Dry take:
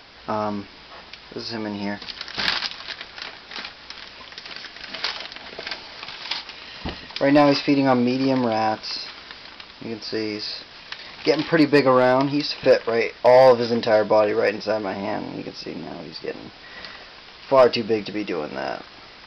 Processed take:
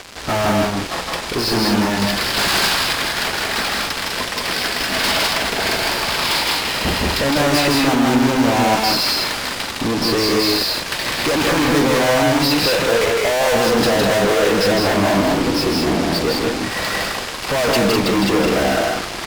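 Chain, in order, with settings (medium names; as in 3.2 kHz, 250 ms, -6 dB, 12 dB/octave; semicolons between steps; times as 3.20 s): peaking EQ 4 kHz -5 dB 2.6 oct; fuzz box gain 42 dB, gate -46 dBFS; loudspeakers at several distances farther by 55 m -3 dB, 69 m -4 dB; trim -4 dB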